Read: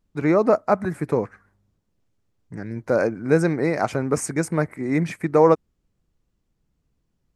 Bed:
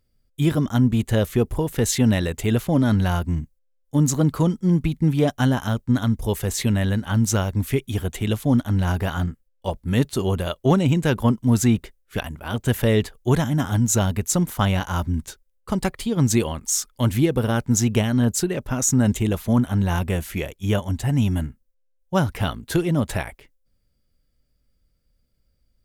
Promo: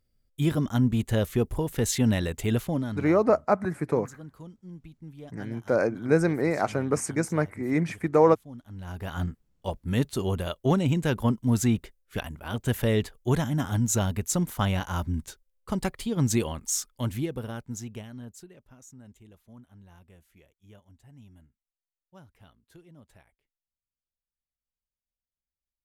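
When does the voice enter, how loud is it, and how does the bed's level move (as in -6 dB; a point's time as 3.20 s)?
2.80 s, -3.5 dB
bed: 2.64 s -5 dB
3.22 s -25 dB
8.61 s -25 dB
9.22 s -5.5 dB
16.74 s -5.5 dB
18.97 s -31.5 dB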